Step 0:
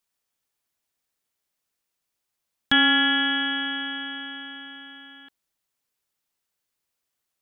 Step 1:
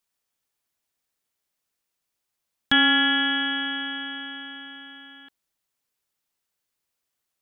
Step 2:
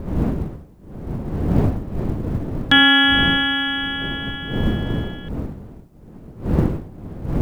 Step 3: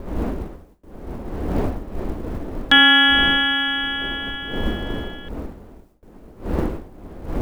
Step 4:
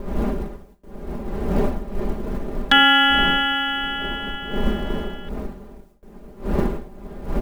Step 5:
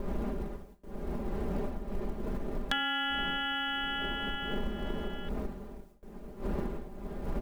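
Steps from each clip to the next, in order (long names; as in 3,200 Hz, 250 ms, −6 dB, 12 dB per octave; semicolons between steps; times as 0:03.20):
no processing that can be heard
wind on the microphone 220 Hz −30 dBFS; log-companded quantiser 8 bits; level +6 dB
noise gate with hold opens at −38 dBFS; parametric band 130 Hz −14 dB 1.4 octaves; level +1 dB
comb filter 5 ms, depth 66%
downward compressor 6 to 1, threshold −26 dBFS, peak gain reduction 15 dB; level −4 dB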